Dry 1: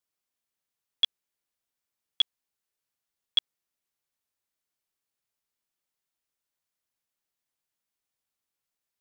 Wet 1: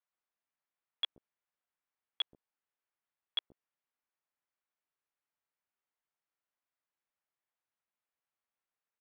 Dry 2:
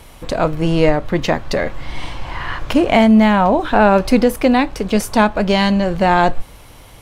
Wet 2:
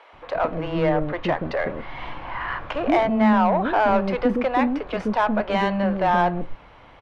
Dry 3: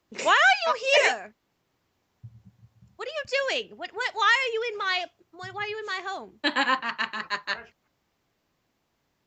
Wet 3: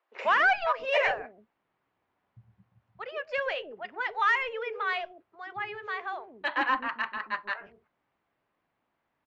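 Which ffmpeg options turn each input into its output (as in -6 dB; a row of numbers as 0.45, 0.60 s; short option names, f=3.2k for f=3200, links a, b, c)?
-filter_complex "[0:a]lowpass=2.8k,asplit=2[a][b];[b]highpass=f=720:p=1,volume=14dB,asoftclip=type=tanh:threshold=-2dB[c];[a][c]amix=inputs=2:normalize=0,lowpass=f=1.4k:p=1,volume=-6dB,acrossover=split=430[d][e];[d]adelay=130[f];[f][e]amix=inputs=2:normalize=0,volume=-6.5dB"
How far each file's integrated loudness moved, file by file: -11.0, -7.0, -4.5 LU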